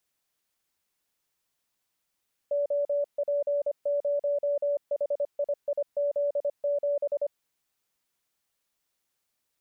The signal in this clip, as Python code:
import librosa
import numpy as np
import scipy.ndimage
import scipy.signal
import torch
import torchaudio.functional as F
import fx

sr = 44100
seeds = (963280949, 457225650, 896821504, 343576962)

y = fx.morse(sr, text='OP0HIIZ7', wpm=25, hz=575.0, level_db=-23.5)